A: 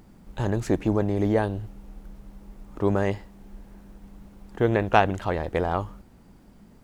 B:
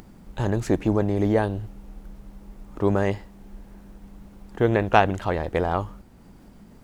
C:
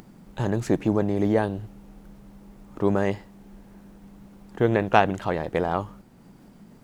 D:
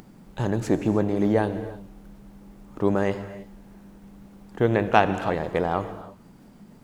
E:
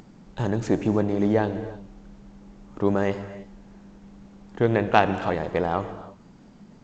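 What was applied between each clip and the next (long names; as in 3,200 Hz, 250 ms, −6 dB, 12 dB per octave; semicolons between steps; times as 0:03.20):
upward compression, threshold −44 dBFS; level +1.5 dB
low shelf with overshoot 100 Hz −7 dB, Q 1.5; level −1 dB
reverb whose tail is shaped and stops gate 350 ms flat, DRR 11 dB
G.722 64 kbit/s 16,000 Hz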